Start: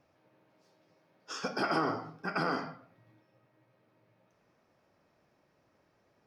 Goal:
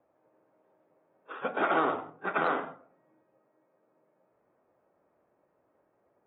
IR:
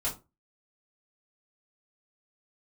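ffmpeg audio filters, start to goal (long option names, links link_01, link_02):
-filter_complex "[0:a]adynamicsmooth=sensitivity=4.5:basefreq=1000,acrossover=split=330 4600:gain=0.158 1 0.0891[link_01][link_02][link_03];[link_01][link_02][link_03]amix=inputs=3:normalize=0,volume=4.5dB" -ar 32000 -c:a aac -b:a 16k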